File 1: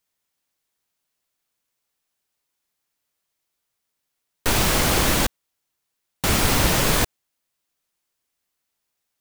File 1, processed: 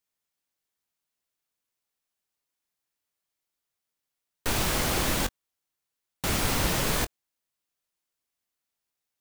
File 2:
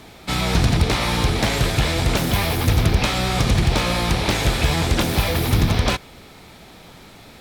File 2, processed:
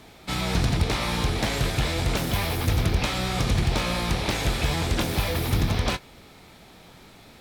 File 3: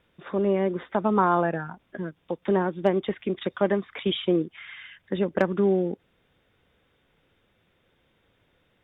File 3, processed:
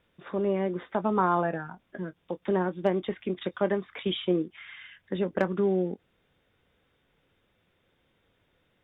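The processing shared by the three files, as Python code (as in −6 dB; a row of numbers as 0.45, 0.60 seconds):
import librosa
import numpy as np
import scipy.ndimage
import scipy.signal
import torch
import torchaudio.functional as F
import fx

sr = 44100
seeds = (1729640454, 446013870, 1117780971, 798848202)

y = fx.doubler(x, sr, ms=22.0, db=-13.5)
y = librosa.util.normalize(y) * 10.0 ** (-12 / 20.0)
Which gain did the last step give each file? −7.0, −5.5, −3.5 decibels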